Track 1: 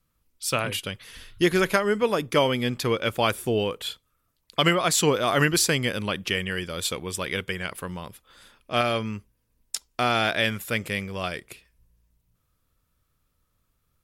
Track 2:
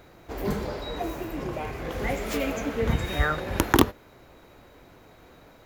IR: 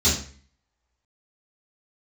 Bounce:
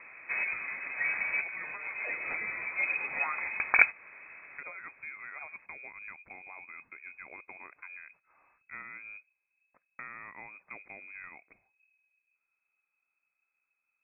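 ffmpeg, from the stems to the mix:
-filter_complex "[0:a]acompressor=threshold=0.0251:ratio=4,adynamicequalizer=threshold=0.00398:dfrequency=1500:dqfactor=0.7:tfrequency=1500:tqfactor=0.7:attack=5:release=100:ratio=0.375:range=1.5:mode=cutabove:tftype=highshelf,volume=0.299,asplit=2[s0][s1];[1:a]volume=1.26[s2];[s1]apad=whole_len=249325[s3];[s2][s3]sidechaincompress=threshold=0.00251:ratio=12:attack=41:release=277[s4];[s0][s4]amix=inputs=2:normalize=0,lowpass=f=2200:t=q:w=0.5098,lowpass=f=2200:t=q:w=0.6013,lowpass=f=2200:t=q:w=0.9,lowpass=f=2200:t=q:w=2.563,afreqshift=-2600"

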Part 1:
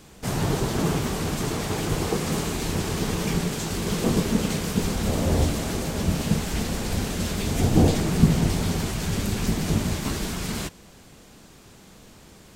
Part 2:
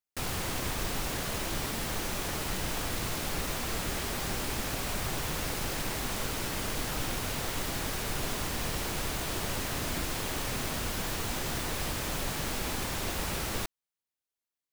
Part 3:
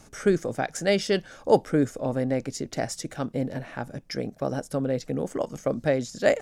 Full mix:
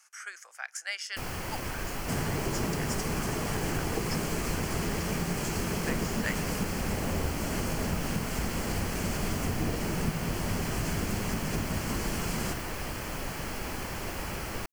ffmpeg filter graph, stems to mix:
-filter_complex "[0:a]acompressor=threshold=0.0398:ratio=6,adelay=1850,volume=0.891[s0];[1:a]highshelf=f=7700:g=7,acrossover=split=4800[s1][s2];[s2]acompressor=threshold=0.00794:ratio=4:attack=1:release=60[s3];[s1][s3]amix=inputs=2:normalize=0,adelay=1000,volume=0.841[s4];[2:a]highpass=f=1200:w=0.5412,highpass=f=1200:w=1.3066,volume=0.668[s5];[s0][s4][s5]amix=inputs=3:normalize=0,equalizer=f=3700:w=6.2:g=-14.5"

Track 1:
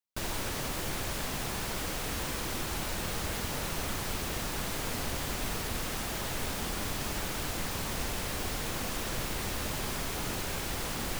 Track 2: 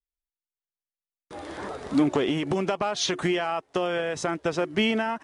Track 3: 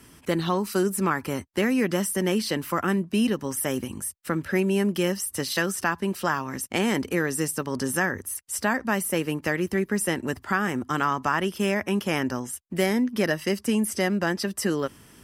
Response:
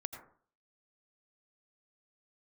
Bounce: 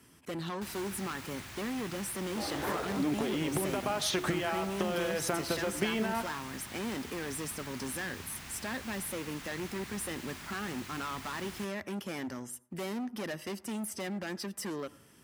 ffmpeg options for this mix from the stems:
-filter_complex "[0:a]equalizer=f=500:t=o:w=1:g=-11,equalizer=f=2000:t=o:w=1:g=4,equalizer=f=16000:t=o:w=1:g=-4,adelay=450,volume=0.316[s0];[1:a]acompressor=threshold=0.0316:ratio=6,adelay=1050,volume=1.19,asplit=2[s1][s2];[s2]volume=0.473[s3];[2:a]volume=17.8,asoftclip=hard,volume=0.0562,volume=0.316,asplit=3[s4][s5][s6];[s5]volume=0.237[s7];[s6]apad=whole_len=277137[s8];[s1][s8]sidechaincompress=threshold=0.00631:ratio=8:attack=16:release=151[s9];[3:a]atrim=start_sample=2205[s10];[s3][s7]amix=inputs=2:normalize=0[s11];[s11][s10]afir=irnorm=-1:irlink=0[s12];[s0][s9][s4][s12]amix=inputs=4:normalize=0,highpass=70"

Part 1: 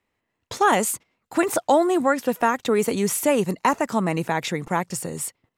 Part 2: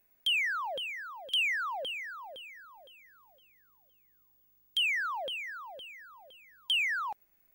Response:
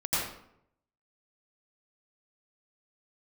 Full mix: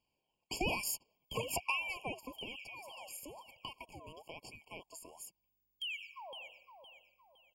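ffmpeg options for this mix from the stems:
-filter_complex "[0:a]acompressor=threshold=0.0631:ratio=12,lowshelf=f=380:g=-10,aeval=exprs='val(0)*sin(2*PI*1400*n/s+1400*0.45/1.1*sin(2*PI*1.1*n/s))':c=same,volume=0.944,afade=t=out:st=1.76:d=0.68:silence=0.237137,asplit=2[s0][s1];[1:a]adelay=1050,volume=0.224,asplit=2[s2][s3];[s3]volume=0.158[s4];[s1]apad=whole_len=379058[s5];[s2][s5]sidechaincompress=threshold=0.00316:ratio=8:attack=16:release=292[s6];[2:a]atrim=start_sample=2205[s7];[s4][s7]afir=irnorm=-1:irlink=0[s8];[s0][s6][s8]amix=inputs=3:normalize=0,afftfilt=real='re*eq(mod(floor(b*sr/1024/1100),2),0)':imag='im*eq(mod(floor(b*sr/1024/1100),2),0)':win_size=1024:overlap=0.75"

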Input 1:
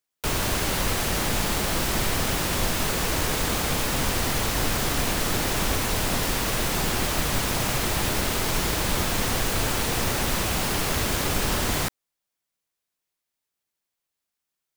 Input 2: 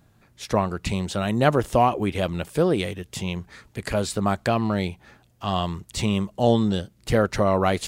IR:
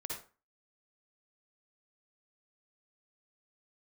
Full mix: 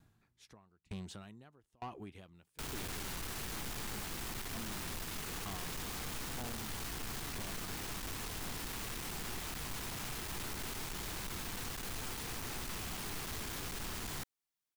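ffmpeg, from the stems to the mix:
-filter_complex "[0:a]aeval=exprs='(tanh(35.5*val(0)+0.6)-tanh(0.6))/35.5':c=same,adelay=2350,volume=0.596[s0];[1:a]acompressor=threshold=0.0447:ratio=4,aeval=exprs='val(0)*pow(10,-36*if(lt(mod(1.1*n/s,1),2*abs(1.1)/1000),1-mod(1.1*n/s,1)/(2*abs(1.1)/1000),(mod(1.1*n/s,1)-2*abs(1.1)/1000)/(1-2*abs(1.1)/1000))/20)':c=same,volume=0.447[s1];[s0][s1]amix=inputs=2:normalize=0,equalizer=f=570:w=3.2:g=-8,asoftclip=type=tanh:threshold=0.0133"

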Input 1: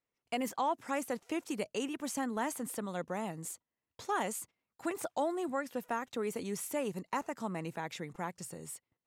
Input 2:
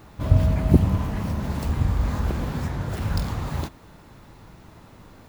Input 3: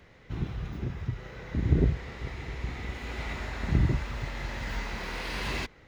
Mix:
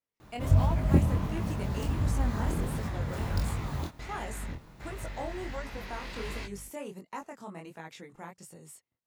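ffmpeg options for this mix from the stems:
-filter_complex "[0:a]volume=0.794,asplit=2[s0][s1];[1:a]adelay=200,volume=0.708[s2];[2:a]asoftclip=type=tanh:threshold=0.0562,aeval=exprs='val(0)+0.00708*(sin(2*PI*50*n/s)+sin(2*PI*2*50*n/s)/2+sin(2*PI*3*50*n/s)/3+sin(2*PI*4*50*n/s)/4+sin(2*PI*5*50*n/s)/5)':c=same,adelay=800,volume=0.668[s3];[s1]apad=whole_len=294508[s4];[s3][s4]sidechaingate=range=0.0224:threshold=0.00112:ratio=16:detection=peak[s5];[s0][s2][s5]amix=inputs=3:normalize=0,flanger=delay=18:depth=6.9:speed=1.4"

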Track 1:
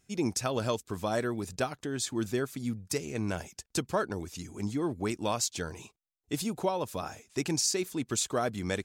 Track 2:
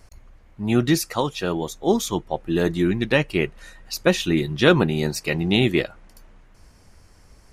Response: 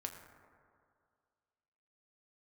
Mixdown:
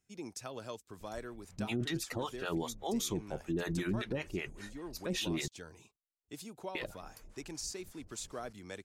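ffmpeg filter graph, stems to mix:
-filter_complex "[0:a]acrossover=split=270[s0][s1];[s0]acompressor=threshold=0.0112:ratio=6[s2];[s2][s1]amix=inputs=2:normalize=0,volume=0.237[s3];[1:a]alimiter=limit=0.224:level=0:latency=1:release=31,acrossover=split=590[s4][s5];[s4]aeval=exprs='val(0)*(1-1/2+1/2*cos(2*PI*5.1*n/s))':c=same[s6];[s5]aeval=exprs='val(0)*(1-1/2-1/2*cos(2*PI*5.1*n/s))':c=same[s7];[s6][s7]amix=inputs=2:normalize=0,adelay=1000,volume=0.708,asplit=3[s8][s9][s10];[s8]atrim=end=5.48,asetpts=PTS-STARTPTS,afade=t=out:st=5.476:d=0.004:c=hsin[s11];[s9]atrim=start=5.48:end=6.75,asetpts=PTS-STARTPTS,volume=0[s12];[s10]atrim=start=6.75,asetpts=PTS-STARTPTS,afade=t=in:d=0.004:c=hsin[s13];[s11][s12][s13]concat=n=3:v=0:a=1[s14];[s3][s14]amix=inputs=2:normalize=0,alimiter=level_in=1.33:limit=0.0631:level=0:latency=1:release=30,volume=0.75"

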